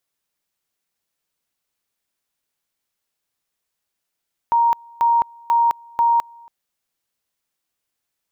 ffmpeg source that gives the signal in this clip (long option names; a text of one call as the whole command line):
ffmpeg -f lavfi -i "aevalsrc='pow(10,(-12.5-28*gte(mod(t,0.49),0.21))/20)*sin(2*PI*935*t)':duration=1.96:sample_rate=44100" out.wav